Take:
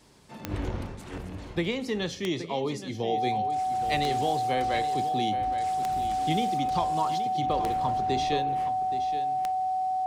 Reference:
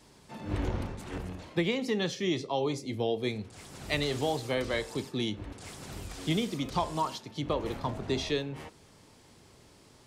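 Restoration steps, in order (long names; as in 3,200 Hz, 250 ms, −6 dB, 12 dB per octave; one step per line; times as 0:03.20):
click removal
notch filter 750 Hz, Q 30
echo removal 823 ms −11.5 dB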